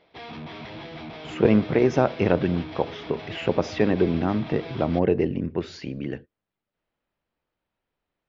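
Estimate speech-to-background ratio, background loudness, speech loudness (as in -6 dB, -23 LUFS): 14.5 dB, -38.5 LUFS, -24.0 LUFS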